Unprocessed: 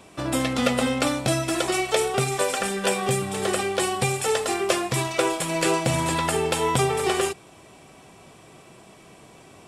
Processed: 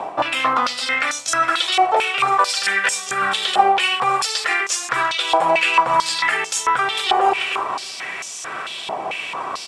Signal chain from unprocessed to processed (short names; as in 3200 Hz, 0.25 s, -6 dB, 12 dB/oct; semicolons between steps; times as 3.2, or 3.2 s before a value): feedback echo 0.316 s, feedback 43%, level -23.5 dB; reverse; compressor 6:1, threshold -34 dBFS, peak gain reduction 17 dB; reverse; dynamic EQ 1300 Hz, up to +4 dB, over -50 dBFS, Q 1.2; in parallel at +1 dB: vocal rider within 4 dB; on the sum: maximiser +20 dB; stepped band-pass 4.5 Hz 810–6300 Hz; gain +4.5 dB